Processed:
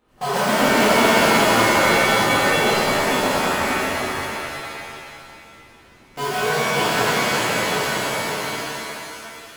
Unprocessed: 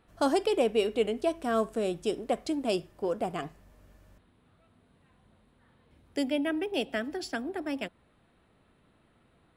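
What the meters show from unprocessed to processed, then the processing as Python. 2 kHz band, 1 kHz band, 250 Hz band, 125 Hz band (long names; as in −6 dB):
+21.5 dB, +17.5 dB, +8.0 dB, +18.0 dB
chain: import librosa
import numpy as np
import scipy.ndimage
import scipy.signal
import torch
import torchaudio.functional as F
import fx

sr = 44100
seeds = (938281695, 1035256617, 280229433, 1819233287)

p1 = fx.cycle_switch(x, sr, every=2, mode='inverted')
p2 = fx.small_body(p1, sr, hz=(250.0, 1000.0, 2900.0), ring_ms=45, db=6)
p3 = p2 + fx.echo_single(p2, sr, ms=571, db=-3.0, dry=0)
p4 = fx.rev_shimmer(p3, sr, seeds[0], rt60_s=2.4, semitones=7, shimmer_db=-2, drr_db=-11.5)
y = F.gain(torch.from_numpy(p4), -5.5).numpy()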